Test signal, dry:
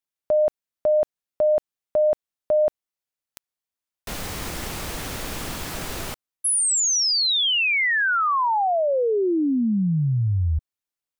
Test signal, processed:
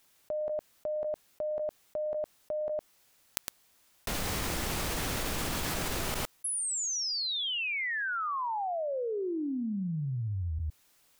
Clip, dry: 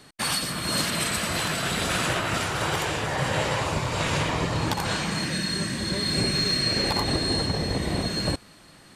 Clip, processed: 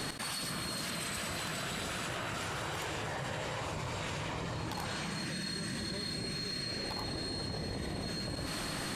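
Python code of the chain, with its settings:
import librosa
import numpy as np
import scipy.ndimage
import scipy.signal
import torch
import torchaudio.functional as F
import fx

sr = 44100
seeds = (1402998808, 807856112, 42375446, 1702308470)

p1 = x + fx.echo_single(x, sr, ms=110, db=-17.0, dry=0)
p2 = fx.env_flatten(p1, sr, amount_pct=100)
y = F.gain(torch.from_numpy(p2), -16.0).numpy()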